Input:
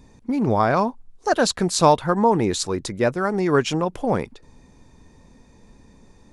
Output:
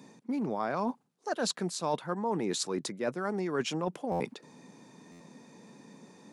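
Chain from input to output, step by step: steep high-pass 150 Hz 36 dB/octave; reverse; compression 4:1, threshold -32 dBFS, peak gain reduction 19 dB; reverse; buffer glitch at 4.11/5.11 s, samples 512, times 7; trim +1 dB

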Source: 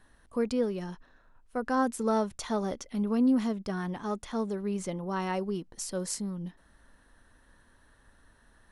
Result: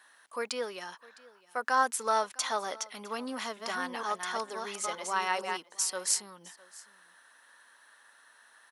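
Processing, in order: 3.11–5.57 s: chunks repeated in reverse 461 ms, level -4 dB; high-pass 1 kHz 12 dB/octave; delay 658 ms -22 dB; trim +7.5 dB

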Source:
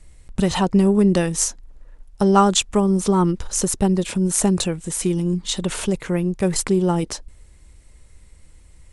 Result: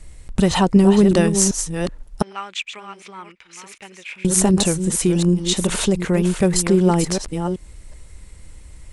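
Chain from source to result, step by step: chunks repeated in reverse 378 ms, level -8 dB; 2.22–4.25 s: band-pass filter 2.3 kHz, Q 5.5; in parallel at -2.5 dB: compression, threshold -29 dBFS, peak gain reduction 17 dB; on the sum: trim +1.5 dB

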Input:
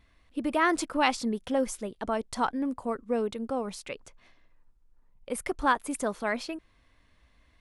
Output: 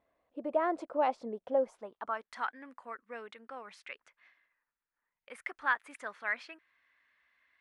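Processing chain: band-pass sweep 610 Hz -> 1.8 kHz, 1.58–2.34 s; trim +1.5 dB

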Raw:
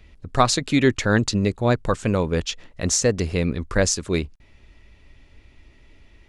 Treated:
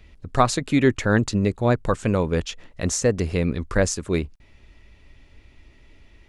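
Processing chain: dynamic bell 4.6 kHz, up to -7 dB, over -38 dBFS, Q 0.82

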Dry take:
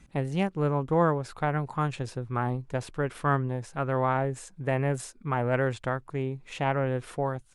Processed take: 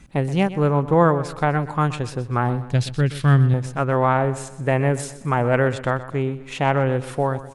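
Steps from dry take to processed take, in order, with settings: 2.71–3.54 s: ten-band graphic EQ 125 Hz +8 dB, 500 Hz -4 dB, 1 kHz -11 dB, 4 kHz +10 dB; on a send: feedback delay 125 ms, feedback 44%, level -15 dB; on the sum: trim +7.5 dB

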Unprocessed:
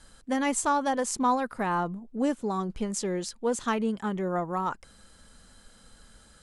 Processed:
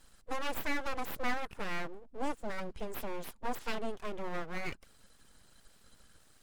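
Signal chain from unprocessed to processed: coarse spectral quantiser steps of 15 dB; full-wave rectifier; trim -5.5 dB

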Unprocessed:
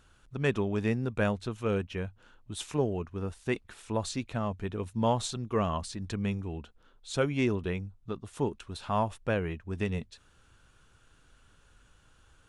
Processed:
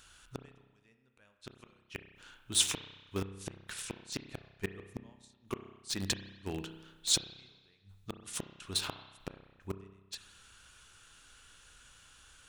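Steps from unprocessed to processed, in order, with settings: inverted gate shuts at -25 dBFS, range -37 dB; tilt shelf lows -8.5 dB, about 1.4 kHz; spring tank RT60 1.3 s, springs 31 ms, chirp 55 ms, DRR 6.5 dB; in parallel at -8.5 dB: word length cut 6-bit, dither none; on the sum: dynamic bell 350 Hz, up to +5 dB, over -57 dBFS, Q 0.95; trim +3 dB

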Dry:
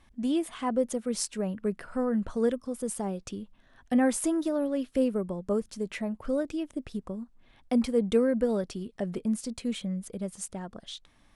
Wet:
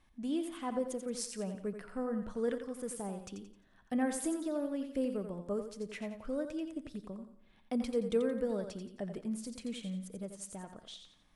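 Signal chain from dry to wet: 2.48–2.94 s: peaking EQ 1.6 kHz +8.5 dB 1.3 oct; thinning echo 87 ms, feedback 36%, high-pass 210 Hz, level -7.5 dB; simulated room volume 3100 m³, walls furnished, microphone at 0.49 m; trim -8 dB

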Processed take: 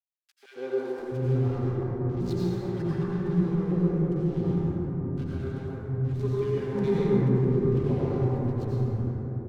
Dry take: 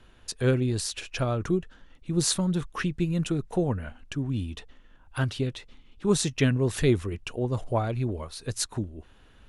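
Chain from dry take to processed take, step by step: low-pass 3.5 kHz 12 dB/octave; peaking EQ 2.6 kHz -8 dB 0.86 oct; band-stop 600 Hz, Q 12; comb of notches 640 Hz; mains buzz 400 Hz, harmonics 15, -40 dBFS -9 dB/octave; hysteresis with a dead band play -29 dBFS; rotary cabinet horn 5 Hz, later 0.8 Hz, at 2.66 s; three bands offset in time highs, mids, lows 140/700 ms, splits 330/1700 Hz; plate-style reverb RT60 4.2 s, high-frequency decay 0.3×, pre-delay 75 ms, DRR -7.5 dB; trim -4 dB

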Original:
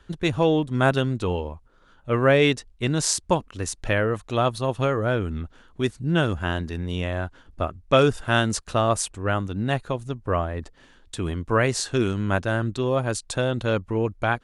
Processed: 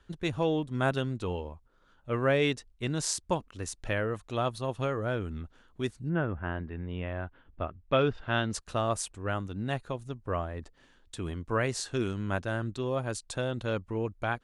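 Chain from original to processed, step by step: 6.08–8.53 s: low-pass 1.9 kHz -> 4.7 kHz 24 dB/octave; trim -8 dB

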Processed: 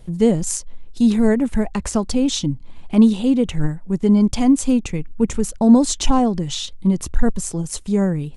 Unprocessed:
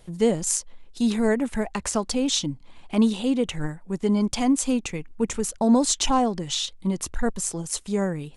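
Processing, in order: bass shelf 300 Hz +12 dB

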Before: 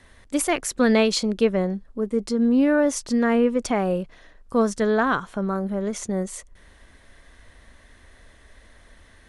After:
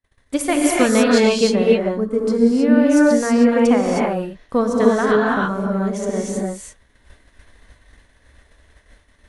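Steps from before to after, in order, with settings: transient shaper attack +5 dB, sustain -3 dB; gated-style reverb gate 340 ms rising, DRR -3.5 dB; expander -38 dBFS; trim -1 dB

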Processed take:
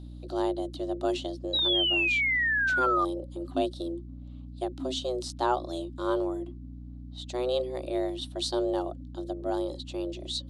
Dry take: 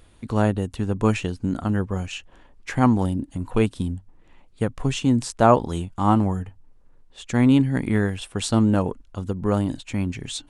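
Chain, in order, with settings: FFT filter 110 Hz 0 dB, 200 Hz -22 dB, 310 Hz -1 dB, 1.9 kHz -15 dB, 3.6 kHz +7 dB, 7.2 kHz -6 dB; painted sound fall, 1.53–3.05 s, 930–3700 Hz -21 dBFS; frequency shift +250 Hz; hum 60 Hz, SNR 12 dB; trim -5 dB

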